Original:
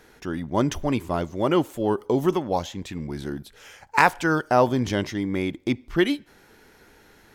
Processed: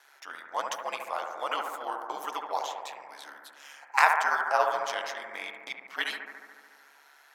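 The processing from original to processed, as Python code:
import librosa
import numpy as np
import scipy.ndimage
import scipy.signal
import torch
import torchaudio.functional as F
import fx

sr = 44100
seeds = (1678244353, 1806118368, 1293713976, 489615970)

y = scipy.signal.sosfilt(scipy.signal.butter(4, 740.0, 'highpass', fs=sr, output='sos'), x)
y = y * np.sin(2.0 * np.pi * 71.0 * np.arange(len(y)) / sr)
y = fx.echo_bbd(y, sr, ms=72, stages=1024, feedback_pct=76, wet_db=-5.5)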